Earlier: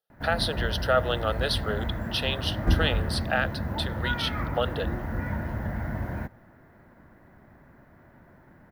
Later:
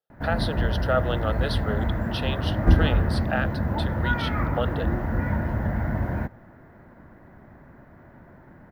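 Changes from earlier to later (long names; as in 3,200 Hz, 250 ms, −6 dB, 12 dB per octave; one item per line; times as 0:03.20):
background +5.5 dB
master: add high-shelf EQ 2,600 Hz −8 dB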